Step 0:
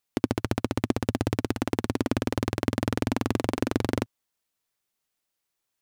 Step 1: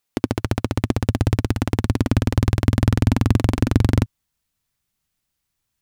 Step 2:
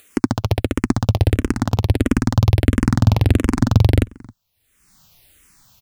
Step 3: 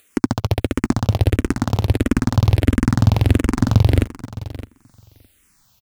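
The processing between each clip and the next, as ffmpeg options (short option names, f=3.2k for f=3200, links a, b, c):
-af "asubboost=boost=6.5:cutoff=170,volume=4dB"
-filter_complex "[0:a]asplit=2[a][b];[b]adelay=268.2,volume=-24dB,highshelf=f=4k:g=-6.04[c];[a][c]amix=inputs=2:normalize=0,acompressor=mode=upward:threshold=-37dB:ratio=2.5,asplit=2[d][e];[e]afreqshift=-1.5[f];[d][f]amix=inputs=2:normalize=1,volume=5.5dB"
-filter_complex "[0:a]aecho=1:1:613|1226:0.168|0.0285,asplit=2[a][b];[b]aeval=exprs='val(0)*gte(abs(val(0)),0.0531)':c=same,volume=-3dB[c];[a][c]amix=inputs=2:normalize=0,volume=-5dB"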